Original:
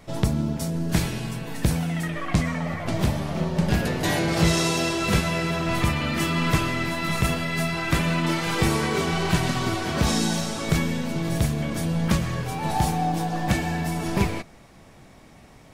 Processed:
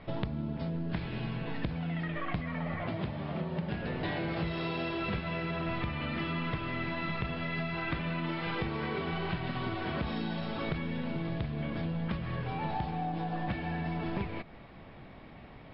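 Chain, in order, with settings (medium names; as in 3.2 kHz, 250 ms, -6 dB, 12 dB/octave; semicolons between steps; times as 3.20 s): low-pass 3.6 kHz 24 dB/octave; compression 6:1, threshold -31 dBFS, peak gain reduction 15 dB; 2.83–3.81 s: high-pass 85 Hz; MP3 64 kbps 12 kHz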